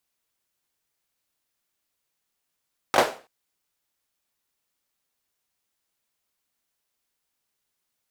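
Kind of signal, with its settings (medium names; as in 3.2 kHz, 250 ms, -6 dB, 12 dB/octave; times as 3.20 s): hand clap length 0.33 s, bursts 3, apart 20 ms, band 600 Hz, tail 0.36 s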